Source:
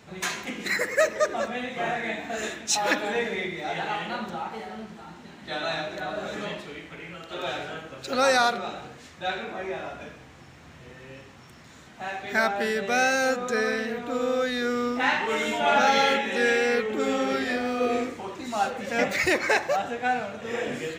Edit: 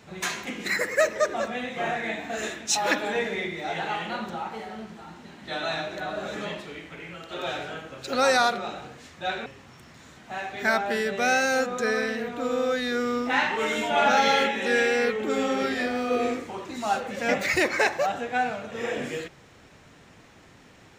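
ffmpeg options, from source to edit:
-filter_complex "[0:a]asplit=2[a][b];[a]atrim=end=9.462[c];[b]atrim=start=11.158[d];[c][d]acrossfade=d=0.004:c1=hsin:c2=hsin"

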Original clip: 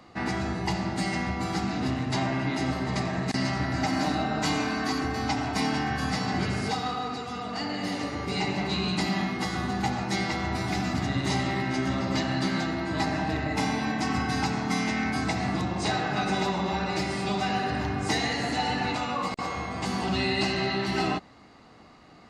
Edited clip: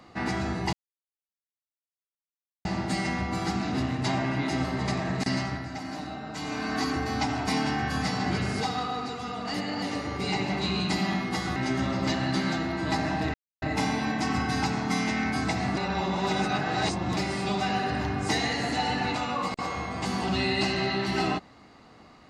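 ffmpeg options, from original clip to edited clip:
-filter_complex "[0:a]asplit=10[a][b][c][d][e][f][g][h][i][j];[a]atrim=end=0.73,asetpts=PTS-STARTPTS,afade=t=out:st=0.726:d=0.004:c=hsin,apad=pad_dur=1.92[k];[b]atrim=start=0.73:end=3.77,asetpts=PTS-STARTPTS,afade=t=in:d=0.004:c=hsin,afade=t=out:st=2.67:d=0.37:silence=0.334965[l];[c]atrim=start=3.77:end=4.48,asetpts=PTS-STARTPTS,volume=-9.5dB[m];[d]atrim=start=4.48:end=7.622,asetpts=PTS-STARTPTS,afade=t=in:d=0.37:silence=0.334965[n];[e]atrim=start=7.618:end=7.902,asetpts=PTS-STARTPTS,areverse[o];[f]atrim=start=7.898:end=9.642[p];[g]atrim=start=11.638:end=13.42,asetpts=PTS-STARTPTS,afade=t=out:st=1.778:d=0.004:c=hsin,apad=pad_dur=0.28[q];[h]atrim=start=13.42:end=15.572,asetpts=PTS-STARTPTS,afade=t=in:d=0.004:c=hsin[r];[i]atrim=start=15.568:end=16.972,asetpts=PTS-STARTPTS,areverse[s];[j]atrim=start=16.968[t];[k][l][m][n]concat=n=4:v=0:a=1[u];[u][o]acrossfade=d=0.004:c1=hsin:c2=hsin[v];[v][p]acrossfade=d=0.004:c1=hsin:c2=hsin[w];[q][r]concat=n=2:v=0:a=1[x];[w][x]acrossfade=d=0.004:c1=hsin:c2=hsin[y];[y][s]acrossfade=d=0.004:c1=hsin:c2=hsin[z];[z][t]acrossfade=d=0.004:c1=hsin:c2=hsin"

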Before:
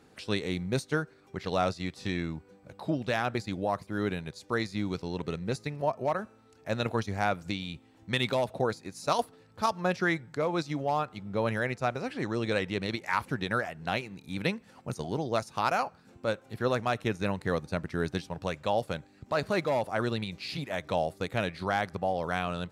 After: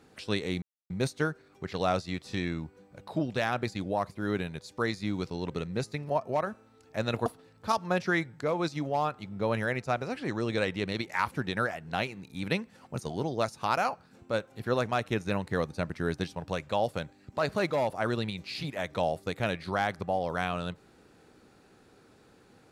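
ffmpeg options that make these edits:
-filter_complex "[0:a]asplit=3[a][b][c];[a]atrim=end=0.62,asetpts=PTS-STARTPTS,afade=t=out:st=0.616:d=0.004:c=hsin,apad=pad_dur=0.28[d];[b]atrim=start=0.62:end=6.982,asetpts=PTS-STARTPTS,afade=t=in:d=0.004:c=hsin[e];[c]atrim=start=9.198[f];[d][e]concat=n=2:v=0:a=1[g];[g][f]acrossfade=d=0.004:c1=hsin:c2=hsin"

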